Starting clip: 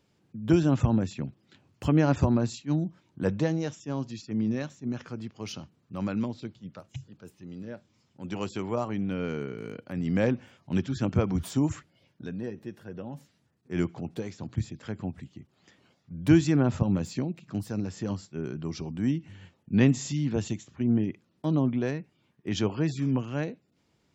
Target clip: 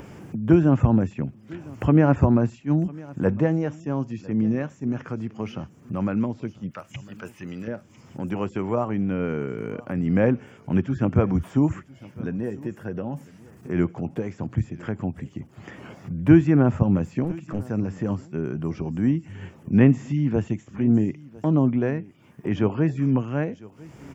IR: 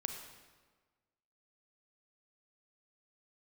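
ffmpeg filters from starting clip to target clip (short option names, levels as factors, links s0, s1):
-filter_complex "[0:a]asettb=1/sr,asplit=3[s0][s1][s2];[s0]atrim=end=6.714[s3];[s1]atrim=start=6.71:end=7.68,asetpts=PTS-STARTPTS,afade=t=in:d=0.004:c=qsin,afade=t=out:st=0.966:d=0.004:c=qsin,tiltshelf=f=1200:g=-10[s4];[s2]atrim=start=7.676[s5];[s3][s4]acrossfade=d=0.004:c1=hsin:c2=qsin[s6];[s6][s5]acrossfade=d=0.004:c1=qsin:c2=hsin,acompressor=mode=upward:threshold=0.0355:ratio=2.5,aecho=1:1:1002:0.0794,asettb=1/sr,asplit=3[s7][s8][s9];[s7]atrim=end=17.244[s10];[s8]atrim=start=17.24:end=17.65,asetpts=PTS-STARTPTS,afade=t=in:d=0.004:c=qsin,afade=t=out:st=0.406:d=0.004:c=qsin,aeval=exprs='clip(val(0),-1,0.02)':c=same[s11];[s9]atrim=start=17.646[s12];[s10][s11]acrossfade=d=0.004:c1=hsin:c2=qsin[s13];[s13][s12]acrossfade=d=0.004:c1=qsin:c2=hsin,acrossover=split=2900[s14][s15];[s15]acompressor=threshold=0.001:ratio=4:attack=1:release=60[s16];[s14][s16]amix=inputs=2:normalize=0,equalizer=f=4000:t=o:w=0.56:g=-14.5,volume=1.88"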